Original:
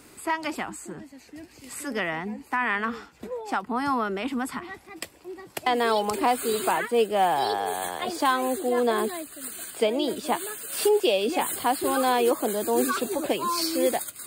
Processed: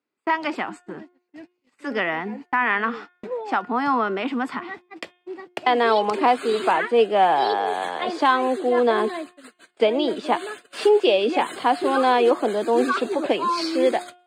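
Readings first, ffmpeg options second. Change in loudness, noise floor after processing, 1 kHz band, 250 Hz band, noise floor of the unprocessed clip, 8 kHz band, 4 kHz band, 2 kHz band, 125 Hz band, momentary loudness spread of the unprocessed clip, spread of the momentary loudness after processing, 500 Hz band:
+4.5 dB, −70 dBFS, +5.0 dB, +3.0 dB, −53 dBFS, below −10 dB, +2.0 dB, +4.5 dB, can't be measured, 16 LU, 16 LU, +4.5 dB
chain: -af "highpass=220,lowpass=3600,agate=range=-36dB:threshold=-42dB:ratio=16:detection=peak,bandreject=frequency=357.3:width_type=h:width=4,bandreject=frequency=714.6:width_type=h:width=4,bandreject=frequency=1071.9:width_type=h:width=4,bandreject=frequency=1429.2:width_type=h:width=4,bandreject=frequency=1786.5:width_type=h:width=4,bandreject=frequency=2143.8:width_type=h:width=4,bandreject=frequency=2501.1:width_type=h:width=4,bandreject=frequency=2858.4:width_type=h:width=4,bandreject=frequency=3215.7:width_type=h:width=4,bandreject=frequency=3573:width_type=h:width=4,volume=5dB"

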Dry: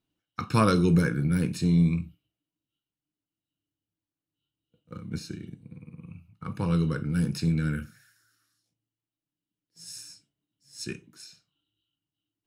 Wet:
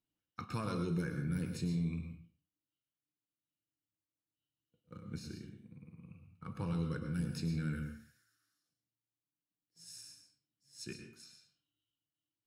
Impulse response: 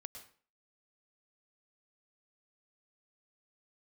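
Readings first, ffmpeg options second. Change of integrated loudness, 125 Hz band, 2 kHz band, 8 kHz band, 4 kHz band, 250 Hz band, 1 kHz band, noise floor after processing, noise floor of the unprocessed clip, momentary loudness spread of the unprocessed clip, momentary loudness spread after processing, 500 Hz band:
−13.0 dB, −11.5 dB, −12.0 dB, −10.0 dB, −11.0 dB, −12.5 dB, −14.5 dB, below −85 dBFS, below −85 dBFS, 20 LU, 19 LU, −13.5 dB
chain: -filter_complex "[0:a]alimiter=limit=-18.5dB:level=0:latency=1:release=152[link_01];[1:a]atrim=start_sample=2205[link_02];[link_01][link_02]afir=irnorm=-1:irlink=0,volume=-4dB"

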